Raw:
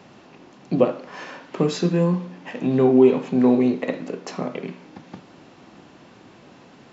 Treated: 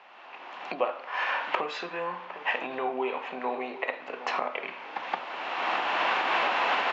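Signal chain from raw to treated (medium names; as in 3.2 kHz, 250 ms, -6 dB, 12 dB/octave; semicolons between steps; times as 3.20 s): recorder AGC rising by 24 dB/s; Chebyshev band-pass 820–2800 Hz, order 2; echo from a far wall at 130 m, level -13 dB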